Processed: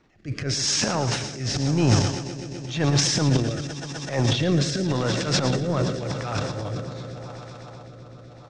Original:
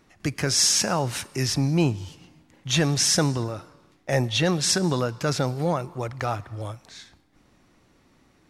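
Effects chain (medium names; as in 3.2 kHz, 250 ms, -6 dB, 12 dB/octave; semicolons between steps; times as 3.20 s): Bessel low-pass 4.9 kHz, order 8; echo with a slow build-up 127 ms, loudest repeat 5, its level -18 dB; transient shaper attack -12 dB, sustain +12 dB; delay 112 ms -10 dB; rotary cabinet horn 0.9 Hz; trim +1.5 dB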